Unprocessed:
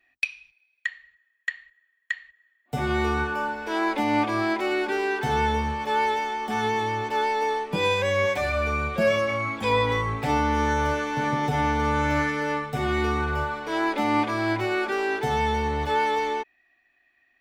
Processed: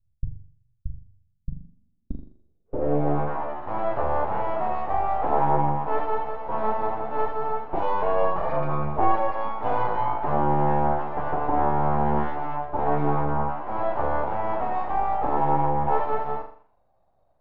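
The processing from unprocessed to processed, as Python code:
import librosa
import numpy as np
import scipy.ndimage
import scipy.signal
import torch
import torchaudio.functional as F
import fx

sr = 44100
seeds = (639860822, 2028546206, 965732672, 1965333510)

y = fx.room_flutter(x, sr, wall_m=7.1, rt60_s=0.5)
y = np.abs(y)
y = fx.filter_sweep_lowpass(y, sr, from_hz=110.0, to_hz=840.0, start_s=1.13, end_s=3.32, q=3.4)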